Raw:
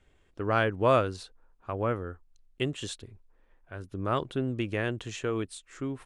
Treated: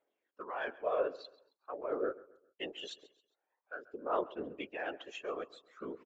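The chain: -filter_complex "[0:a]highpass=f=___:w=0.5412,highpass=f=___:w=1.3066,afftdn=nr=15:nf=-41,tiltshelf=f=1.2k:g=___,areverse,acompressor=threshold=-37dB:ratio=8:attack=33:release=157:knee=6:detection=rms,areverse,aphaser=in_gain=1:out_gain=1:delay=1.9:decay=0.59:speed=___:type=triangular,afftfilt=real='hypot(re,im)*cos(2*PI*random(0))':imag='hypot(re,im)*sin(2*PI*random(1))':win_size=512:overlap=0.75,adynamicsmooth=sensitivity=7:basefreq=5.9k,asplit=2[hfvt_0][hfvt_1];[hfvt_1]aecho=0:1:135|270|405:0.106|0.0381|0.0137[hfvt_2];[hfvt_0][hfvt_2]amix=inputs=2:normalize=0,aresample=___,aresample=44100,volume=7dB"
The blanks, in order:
460, 460, 4.5, 0.48, 16000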